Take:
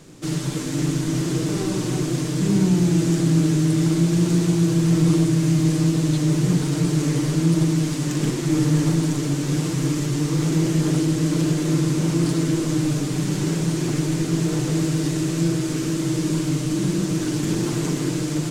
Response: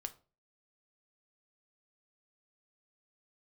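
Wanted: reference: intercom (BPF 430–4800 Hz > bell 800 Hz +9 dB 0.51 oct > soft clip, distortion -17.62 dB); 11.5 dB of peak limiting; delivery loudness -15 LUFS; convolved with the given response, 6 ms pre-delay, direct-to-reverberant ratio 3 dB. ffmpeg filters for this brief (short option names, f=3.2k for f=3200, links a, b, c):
-filter_complex "[0:a]alimiter=limit=-18.5dB:level=0:latency=1,asplit=2[a][b];[1:a]atrim=start_sample=2205,adelay=6[c];[b][c]afir=irnorm=-1:irlink=0,volume=-0.5dB[d];[a][d]amix=inputs=2:normalize=0,highpass=430,lowpass=4.8k,equalizer=f=800:t=o:w=0.51:g=9,asoftclip=threshold=-26dB,volume=18dB"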